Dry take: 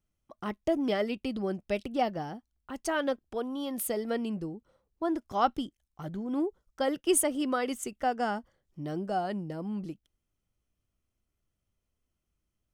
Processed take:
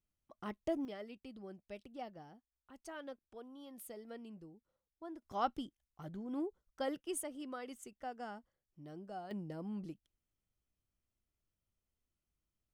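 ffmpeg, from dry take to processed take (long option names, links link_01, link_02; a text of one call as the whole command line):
ffmpeg -i in.wav -af "asetnsamples=nb_out_samples=441:pad=0,asendcmd='0.85 volume volume -18dB;5.22 volume volume -9dB;7.03 volume volume -15.5dB;9.31 volume volume -7.5dB',volume=-8.5dB" out.wav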